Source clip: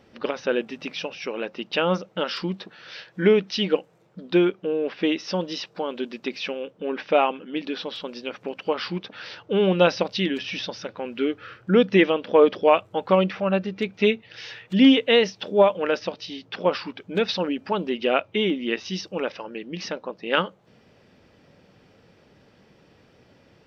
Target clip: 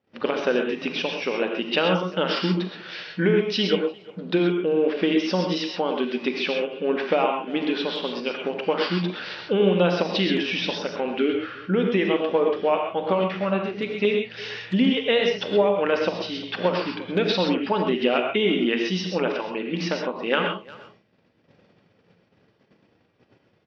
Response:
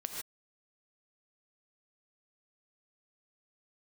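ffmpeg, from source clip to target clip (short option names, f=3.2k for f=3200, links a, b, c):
-filter_complex "[0:a]asettb=1/sr,asplit=3[a][b][c];[a]atrim=end=11.554[d];[b]atrim=start=11.55:end=14.05,asetpts=PTS-STARTPTS,afade=t=in:d=0.004:c=qsin,afade=t=out:st=2.496:d=0.004:c=qsin,flanger=delay=5.9:depth=8.5:regen=71:speed=1.2:shape=triangular[e];[c]atrim=start=14.046[f];[d][e]acrossfade=d=0.004:c1=hsin:c2=qsin[g];[g][f]acrossfade=d=0.004:c1=qsin:c2=hsin,asplit=2[h][i];[i]adelay=350,highpass=300,lowpass=3.4k,asoftclip=type=hard:threshold=-13.5dB,volume=-24dB[j];[h][j]amix=inputs=2:normalize=0,agate=range=-26dB:threshold=-53dB:ratio=16:detection=peak,lowpass=4.5k,acompressor=threshold=-22dB:ratio=6,highpass=80,asplit=2[k][l];[l]adelay=44,volume=-13.5dB[m];[k][m]amix=inputs=2:normalize=0[n];[1:a]atrim=start_sample=2205,atrim=end_sample=6174[o];[n][o]afir=irnorm=-1:irlink=0,volume=6dB"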